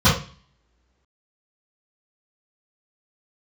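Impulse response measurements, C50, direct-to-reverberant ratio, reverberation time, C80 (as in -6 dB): 5.0 dB, -15.5 dB, no single decay rate, 11.5 dB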